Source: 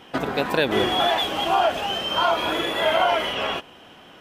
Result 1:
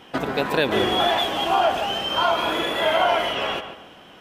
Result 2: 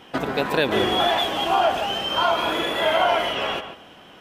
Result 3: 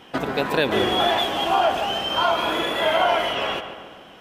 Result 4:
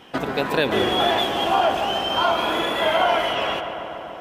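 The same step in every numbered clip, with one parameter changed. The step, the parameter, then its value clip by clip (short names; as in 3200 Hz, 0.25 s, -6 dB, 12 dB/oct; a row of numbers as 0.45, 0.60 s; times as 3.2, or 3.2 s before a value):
darkening echo, feedback: 33, 17, 57, 84%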